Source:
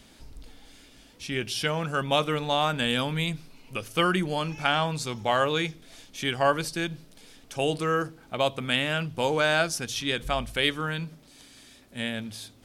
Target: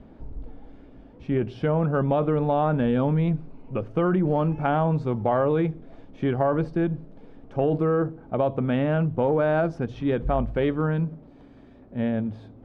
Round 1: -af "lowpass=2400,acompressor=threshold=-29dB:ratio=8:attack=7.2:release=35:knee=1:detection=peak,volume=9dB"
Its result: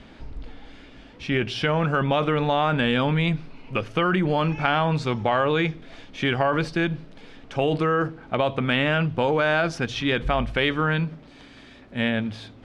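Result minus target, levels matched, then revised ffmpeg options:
2,000 Hz band +10.5 dB
-af "lowpass=730,acompressor=threshold=-29dB:ratio=8:attack=7.2:release=35:knee=1:detection=peak,volume=9dB"

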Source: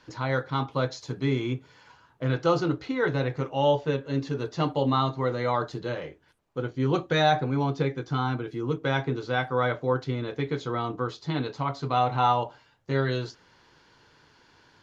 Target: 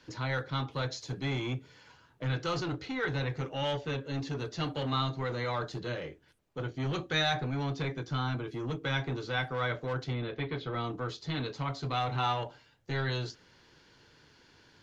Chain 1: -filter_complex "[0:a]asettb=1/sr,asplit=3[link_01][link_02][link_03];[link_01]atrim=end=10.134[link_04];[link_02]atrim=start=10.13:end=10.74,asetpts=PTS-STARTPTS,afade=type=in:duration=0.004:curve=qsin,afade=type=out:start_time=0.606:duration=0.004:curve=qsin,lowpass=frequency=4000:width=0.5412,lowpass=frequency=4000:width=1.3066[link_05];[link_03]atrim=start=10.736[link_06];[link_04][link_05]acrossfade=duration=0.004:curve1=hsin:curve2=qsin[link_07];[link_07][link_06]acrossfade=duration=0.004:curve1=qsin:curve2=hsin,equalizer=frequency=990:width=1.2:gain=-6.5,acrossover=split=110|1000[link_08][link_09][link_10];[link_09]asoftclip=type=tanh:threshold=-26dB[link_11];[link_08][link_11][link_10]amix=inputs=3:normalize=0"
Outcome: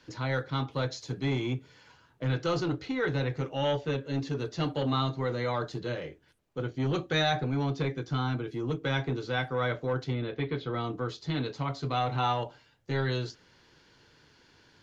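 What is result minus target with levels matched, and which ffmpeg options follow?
soft clipping: distortion −6 dB
-filter_complex "[0:a]asettb=1/sr,asplit=3[link_01][link_02][link_03];[link_01]atrim=end=10.134[link_04];[link_02]atrim=start=10.13:end=10.74,asetpts=PTS-STARTPTS,afade=type=in:duration=0.004:curve=qsin,afade=type=out:start_time=0.606:duration=0.004:curve=qsin,lowpass=frequency=4000:width=0.5412,lowpass=frequency=4000:width=1.3066[link_05];[link_03]atrim=start=10.736[link_06];[link_04][link_05]acrossfade=duration=0.004:curve1=hsin:curve2=qsin[link_07];[link_07][link_06]acrossfade=duration=0.004:curve1=qsin:curve2=hsin,equalizer=frequency=990:width=1.2:gain=-6.5,acrossover=split=110|1000[link_08][link_09][link_10];[link_09]asoftclip=type=tanh:threshold=-34dB[link_11];[link_08][link_11][link_10]amix=inputs=3:normalize=0"

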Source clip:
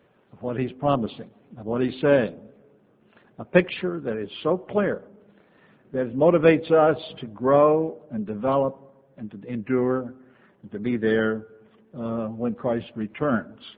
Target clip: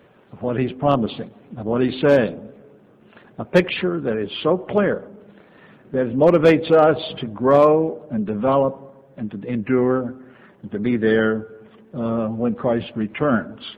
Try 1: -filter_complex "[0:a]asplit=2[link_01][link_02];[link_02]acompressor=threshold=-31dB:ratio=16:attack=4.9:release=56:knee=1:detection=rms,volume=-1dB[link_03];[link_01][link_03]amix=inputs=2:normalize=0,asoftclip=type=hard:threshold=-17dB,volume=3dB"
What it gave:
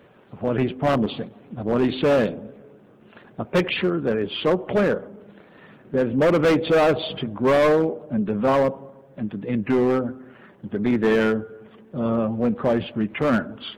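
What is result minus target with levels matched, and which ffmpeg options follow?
hard clipping: distortion +14 dB
-filter_complex "[0:a]asplit=2[link_01][link_02];[link_02]acompressor=threshold=-31dB:ratio=16:attack=4.9:release=56:knee=1:detection=rms,volume=-1dB[link_03];[link_01][link_03]amix=inputs=2:normalize=0,asoftclip=type=hard:threshold=-8.5dB,volume=3dB"

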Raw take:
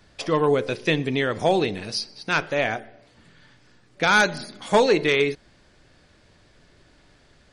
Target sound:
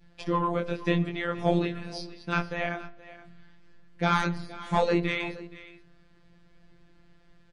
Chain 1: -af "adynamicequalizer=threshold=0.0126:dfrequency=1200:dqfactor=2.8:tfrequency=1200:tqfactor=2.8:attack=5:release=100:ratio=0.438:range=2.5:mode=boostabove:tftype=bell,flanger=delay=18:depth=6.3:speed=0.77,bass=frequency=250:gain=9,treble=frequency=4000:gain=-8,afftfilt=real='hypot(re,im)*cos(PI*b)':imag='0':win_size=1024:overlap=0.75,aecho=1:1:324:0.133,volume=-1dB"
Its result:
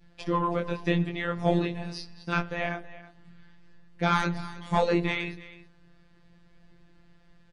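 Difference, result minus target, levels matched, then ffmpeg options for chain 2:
echo 149 ms early
-af "adynamicequalizer=threshold=0.0126:dfrequency=1200:dqfactor=2.8:tfrequency=1200:tqfactor=2.8:attack=5:release=100:ratio=0.438:range=2.5:mode=boostabove:tftype=bell,flanger=delay=18:depth=6.3:speed=0.77,bass=frequency=250:gain=9,treble=frequency=4000:gain=-8,afftfilt=real='hypot(re,im)*cos(PI*b)':imag='0':win_size=1024:overlap=0.75,aecho=1:1:473:0.133,volume=-1dB"

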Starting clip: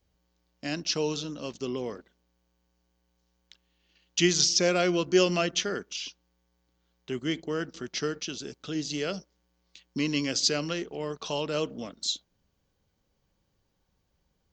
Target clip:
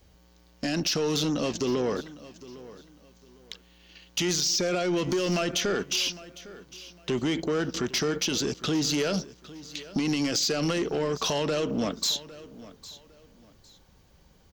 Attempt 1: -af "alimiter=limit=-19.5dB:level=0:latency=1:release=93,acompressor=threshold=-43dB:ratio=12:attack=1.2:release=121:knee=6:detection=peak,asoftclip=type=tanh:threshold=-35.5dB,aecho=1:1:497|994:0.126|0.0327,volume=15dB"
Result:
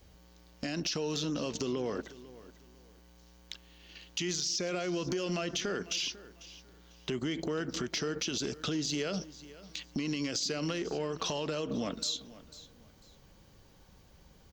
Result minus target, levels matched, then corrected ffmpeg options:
downward compressor: peak gain reduction +9.5 dB; echo 309 ms early
-af "alimiter=limit=-19.5dB:level=0:latency=1:release=93,acompressor=threshold=-32.5dB:ratio=12:attack=1.2:release=121:knee=6:detection=peak,asoftclip=type=tanh:threshold=-35.5dB,aecho=1:1:806|1612:0.126|0.0327,volume=15dB"

